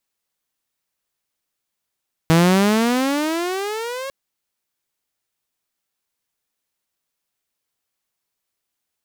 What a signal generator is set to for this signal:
pitch glide with a swell saw, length 1.80 s, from 160 Hz, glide +21.5 semitones, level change −16 dB, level −8 dB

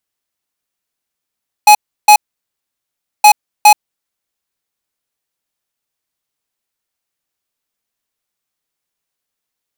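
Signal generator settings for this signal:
beeps in groups square 840 Hz, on 0.08 s, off 0.33 s, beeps 2, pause 1.08 s, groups 2, −3.5 dBFS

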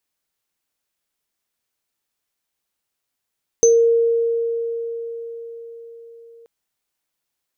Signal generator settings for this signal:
inharmonic partials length 2.83 s, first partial 463 Hz, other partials 6,180 Hz, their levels −2 dB, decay 4.99 s, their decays 0.25 s, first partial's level −9 dB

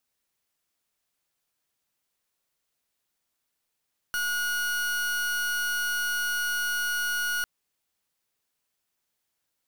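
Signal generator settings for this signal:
pulse wave 1,450 Hz, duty 40% −28 dBFS 3.30 s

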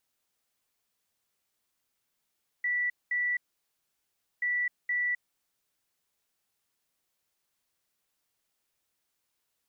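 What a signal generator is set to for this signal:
beeps in groups sine 1,960 Hz, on 0.26 s, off 0.21 s, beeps 2, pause 1.05 s, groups 2, −26 dBFS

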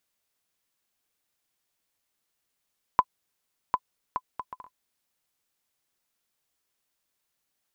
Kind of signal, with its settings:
bouncing ball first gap 0.75 s, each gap 0.56, 1,010 Hz, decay 52 ms −7 dBFS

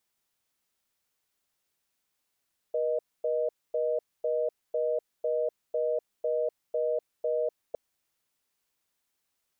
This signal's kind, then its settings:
call progress tone reorder tone, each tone −28 dBFS 5.01 s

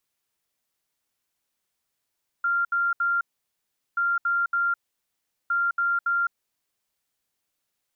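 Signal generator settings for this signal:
beeps in groups sine 1,390 Hz, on 0.21 s, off 0.07 s, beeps 3, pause 0.76 s, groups 3, −20.5 dBFS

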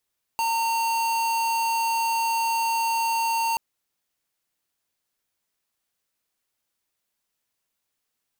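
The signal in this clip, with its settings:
tone square 914 Hz −24 dBFS 3.18 s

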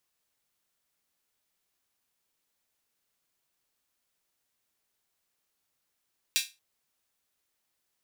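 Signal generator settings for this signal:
open synth hi-hat length 0.23 s, high-pass 2,900 Hz, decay 0.25 s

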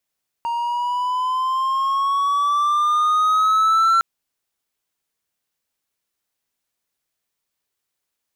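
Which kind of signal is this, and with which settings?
pitch glide with a swell triangle, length 3.56 s, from 932 Hz, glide +6.5 semitones, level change +8 dB, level −10.5 dB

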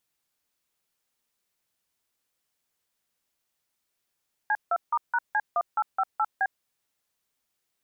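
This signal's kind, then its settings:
touch tones "C2*#C1858B", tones 51 ms, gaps 161 ms, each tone −24 dBFS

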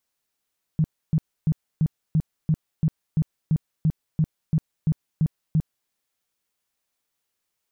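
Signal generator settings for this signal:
tone bursts 157 Hz, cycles 8, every 0.34 s, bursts 15, −16 dBFS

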